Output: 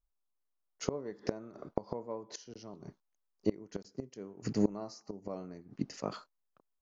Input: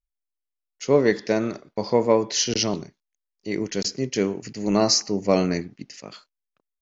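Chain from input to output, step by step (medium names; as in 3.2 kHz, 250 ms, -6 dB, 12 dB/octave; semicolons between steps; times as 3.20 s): inverted gate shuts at -18 dBFS, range -26 dB; resonant high shelf 1.6 kHz -9 dB, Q 1.5; trim +3 dB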